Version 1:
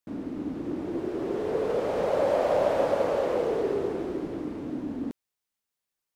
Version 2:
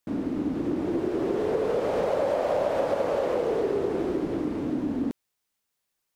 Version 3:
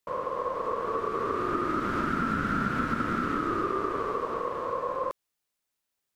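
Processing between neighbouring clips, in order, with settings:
compressor 4:1, threshold -29 dBFS, peak gain reduction 8.5 dB; gain +6 dB
ring modulator 790 Hz

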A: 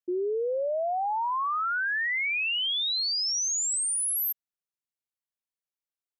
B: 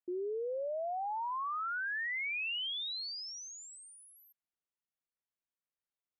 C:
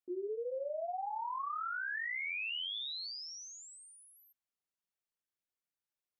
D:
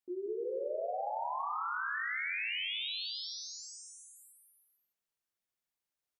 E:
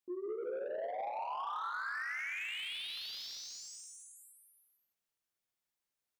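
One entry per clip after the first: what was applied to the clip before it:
LPF 2500 Hz 12 dB/oct; dynamic EQ 1600 Hz, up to -5 dB, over -44 dBFS, Q 0.92; limiter -31.5 dBFS, peak gain reduction 6.5 dB; gain -2 dB
flange 1.8 Hz, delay 1.4 ms, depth 9.4 ms, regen -23%; gain +1.5 dB
bouncing-ball echo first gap 0.18 s, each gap 0.8×, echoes 5
soft clip -34.5 dBFS, distortion -14 dB; flange 0.91 Hz, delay 8.6 ms, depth 1.1 ms, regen -67%; slew limiter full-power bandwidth 19 Hz; gain +4.5 dB

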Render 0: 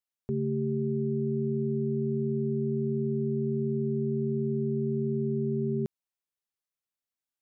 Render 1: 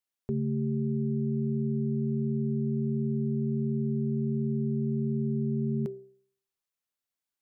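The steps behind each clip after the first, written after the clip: de-hum 65.16 Hz, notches 11; gain +1.5 dB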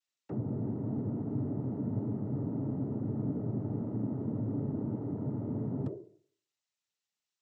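soft clip -27.5 dBFS, distortion -15 dB; noise vocoder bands 12; gain -1.5 dB

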